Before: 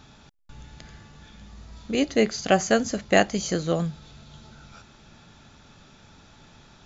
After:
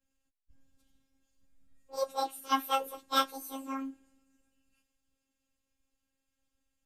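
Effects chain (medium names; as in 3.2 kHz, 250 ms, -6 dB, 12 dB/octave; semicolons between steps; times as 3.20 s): frequency-domain pitch shifter +11.5 st; robot voice 269 Hz; three bands expanded up and down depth 70%; trim -8 dB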